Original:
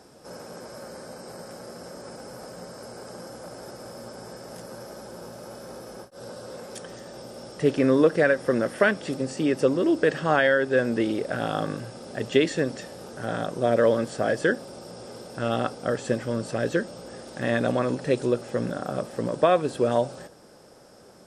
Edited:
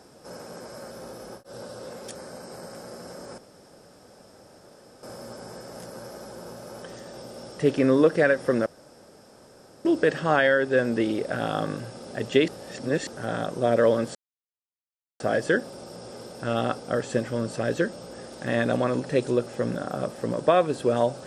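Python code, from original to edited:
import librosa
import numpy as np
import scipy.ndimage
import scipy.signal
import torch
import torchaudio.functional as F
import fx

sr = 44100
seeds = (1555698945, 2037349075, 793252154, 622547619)

y = fx.edit(x, sr, fx.room_tone_fill(start_s=2.14, length_s=1.65),
    fx.move(start_s=5.58, length_s=1.24, to_s=0.91),
    fx.room_tone_fill(start_s=8.66, length_s=1.19),
    fx.reverse_span(start_s=12.48, length_s=0.59),
    fx.insert_silence(at_s=14.15, length_s=1.05), tone=tone)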